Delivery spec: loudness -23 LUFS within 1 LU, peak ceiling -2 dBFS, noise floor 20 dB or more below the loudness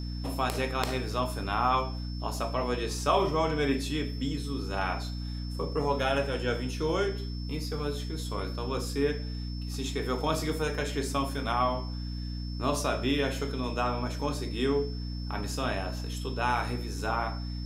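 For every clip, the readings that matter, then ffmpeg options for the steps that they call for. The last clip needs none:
hum 60 Hz; highest harmonic 300 Hz; hum level -33 dBFS; steady tone 5.3 kHz; tone level -46 dBFS; loudness -31.0 LUFS; peak level -7.5 dBFS; loudness target -23.0 LUFS
-> -af "bandreject=f=60:t=h:w=6,bandreject=f=120:t=h:w=6,bandreject=f=180:t=h:w=6,bandreject=f=240:t=h:w=6,bandreject=f=300:t=h:w=6"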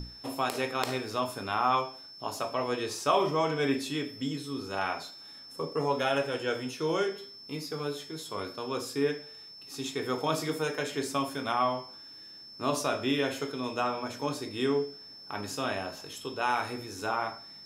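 hum not found; steady tone 5.3 kHz; tone level -46 dBFS
-> -af "bandreject=f=5300:w=30"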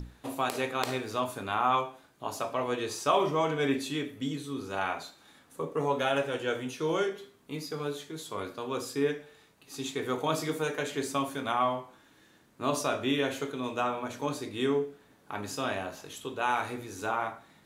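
steady tone not found; loudness -32.0 LUFS; peak level -8.0 dBFS; loudness target -23.0 LUFS
-> -af "volume=2.82,alimiter=limit=0.794:level=0:latency=1"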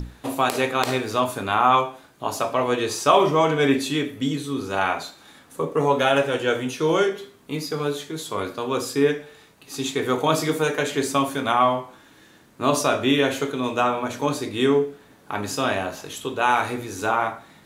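loudness -23.0 LUFS; peak level -2.0 dBFS; noise floor -52 dBFS

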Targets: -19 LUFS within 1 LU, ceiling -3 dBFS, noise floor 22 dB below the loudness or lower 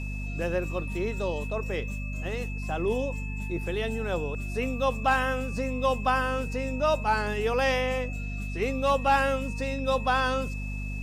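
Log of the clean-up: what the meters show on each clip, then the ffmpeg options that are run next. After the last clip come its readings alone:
hum 50 Hz; highest harmonic 250 Hz; hum level -31 dBFS; steady tone 2.6 kHz; tone level -40 dBFS; loudness -28.5 LUFS; peak level -13.0 dBFS; loudness target -19.0 LUFS
-> -af "bandreject=f=50:t=h:w=4,bandreject=f=100:t=h:w=4,bandreject=f=150:t=h:w=4,bandreject=f=200:t=h:w=4,bandreject=f=250:t=h:w=4"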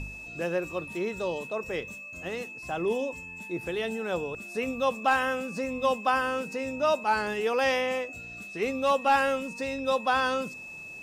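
hum not found; steady tone 2.6 kHz; tone level -40 dBFS
-> -af "bandreject=f=2600:w=30"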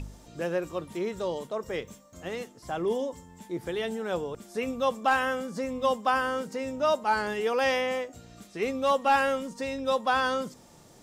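steady tone not found; loudness -29.0 LUFS; peak level -14.5 dBFS; loudness target -19.0 LUFS
-> -af "volume=3.16"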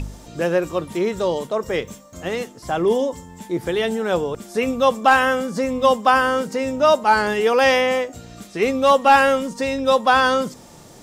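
loudness -19.0 LUFS; peak level -4.5 dBFS; noise floor -44 dBFS

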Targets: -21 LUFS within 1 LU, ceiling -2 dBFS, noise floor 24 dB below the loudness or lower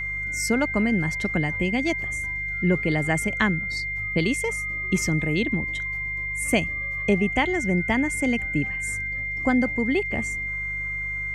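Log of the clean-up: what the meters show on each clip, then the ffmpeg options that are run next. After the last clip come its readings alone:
hum 50 Hz; highest harmonic 150 Hz; hum level -36 dBFS; steady tone 2.1 kHz; tone level -27 dBFS; loudness -24.0 LUFS; peak level -7.5 dBFS; loudness target -21.0 LUFS
-> -af "bandreject=f=50:t=h:w=4,bandreject=f=100:t=h:w=4,bandreject=f=150:t=h:w=4"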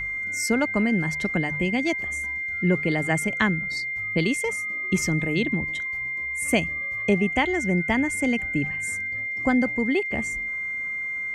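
hum not found; steady tone 2.1 kHz; tone level -27 dBFS
-> -af "bandreject=f=2100:w=30"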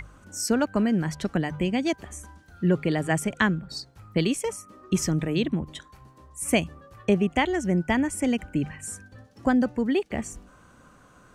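steady tone not found; loudness -26.0 LUFS; peak level -8.0 dBFS; loudness target -21.0 LUFS
-> -af "volume=1.78"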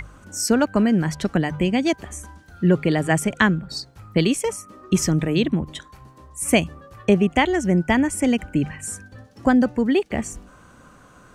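loudness -21.0 LUFS; peak level -3.0 dBFS; noise floor -50 dBFS

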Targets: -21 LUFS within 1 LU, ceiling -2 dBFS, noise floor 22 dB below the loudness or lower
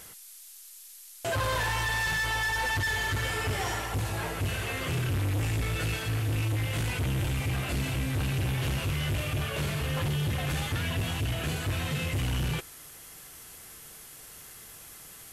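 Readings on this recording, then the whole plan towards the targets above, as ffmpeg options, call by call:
noise floor -49 dBFS; noise floor target -52 dBFS; loudness -29.5 LUFS; peak level -23.5 dBFS; loudness target -21.0 LUFS
-> -af "afftdn=nr=6:nf=-49"
-af "volume=2.66"

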